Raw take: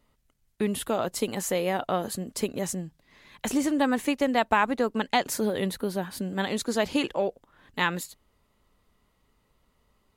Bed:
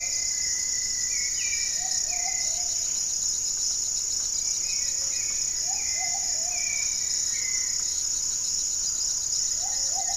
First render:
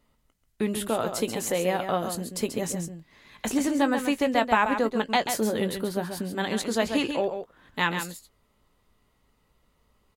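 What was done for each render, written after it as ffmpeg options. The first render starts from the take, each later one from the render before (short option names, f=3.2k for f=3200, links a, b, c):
-filter_complex "[0:a]asplit=2[a][b];[b]adelay=18,volume=-12dB[c];[a][c]amix=inputs=2:normalize=0,aecho=1:1:136:0.422"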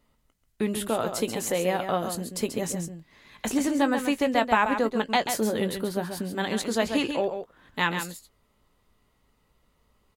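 -filter_complex "[0:a]asettb=1/sr,asplit=3[a][b][c];[a]atrim=end=6.074[d];[b]atrim=start=6.07:end=6.74,asetpts=PTS-STARTPTS,afade=t=in:d=0.004:c=qsin,afade=t=out:st=0.666:d=0.004:c=qsin,aeval=exprs='val(0)*gte(abs(val(0)),0.00188)':c=same[e];[c]atrim=start=6.736[f];[d][e]acrossfade=d=0.004:c1=hsin:c2=qsin[g];[g][f]acrossfade=d=0.004:c1=qsin:c2=hsin"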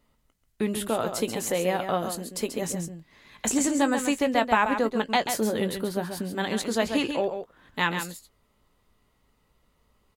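-filter_complex "[0:a]asettb=1/sr,asplit=3[a][b][c];[a]atrim=end=2.114[d];[b]atrim=start=2.11:end=2.62,asetpts=PTS-STARTPTS,afade=t=in:d=0.004:c=qsin,afade=t=out:st=0.506:d=0.004:c=qsin,equalizer=f=120:t=o:w=0.77:g=-13.5[e];[c]atrim=start=2.616[f];[d][e]acrossfade=d=0.004:c1=hsin:c2=qsin[g];[g][f]acrossfade=d=0.004:c1=qsin:c2=hsin,asettb=1/sr,asplit=3[h][i][j];[h]atrim=end=3.474[k];[i]atrim=start=3.47:end=4.19,asetpts=PTS-STARTPTS,afade=t=in:d=0.004:c=qsin,afade=t=out:st=0.716:d=0.004:c=qsin,equalizer=f=7.5k:w=2.1:g=11.5[l];[j]atrim=start=4.186[m];[k][l]acrossfade=d=0.004:c1=hsin:c2=qsin[n];[n][m]acrossfade=d=0.004:c1=qsin:c2=hsin"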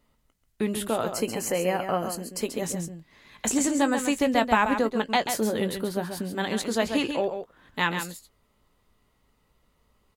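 -filter_complex "[0:a]asettb=1/sr,asplit=3[a][b][c];[a]atrim=end=1.134[d];[b]atrim=start=1.13:end=2.41,asetpts=PTS-STARTPTS,afade=t=in:d=0.004:c=qsin,afade=t=out:st=1.276:d=0.004:c=qsin,asuperstop=centerf=3600:order=8:qfactor=3.9[e];[c]atrim=start=2.406[f];[d][e]acrossfade=d=0.004:c1=hsin:c2=qsin[g];[g][f]acrossfade=d=0.004:c1=qsin:c2=hsin,asettb=1/sr,asplit=3[h][i][j];[h]atrim=end=4.164[k];[i]atrim=start=4.16:end=4.82,asetpts=PTS-STARTPTS,afade=t=in:d=0.004:c=qsin,afade=t=out:st=0.656:d=0.004:c=qsin,bass=f=250:g=5,treble=f=4k:g=3[l];[j]atrim=start=4.816[m];[k][l]acrossfade=d=0.004:c1=hsin:c2=qsin[n];[n][m]acrossfade=d=0.004:c1=qsin:c2=hsin"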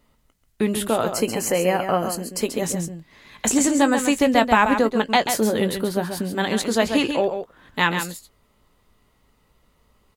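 -af "volume=5.5dB,alimiter=limit=-3dB:level=0:latency=1"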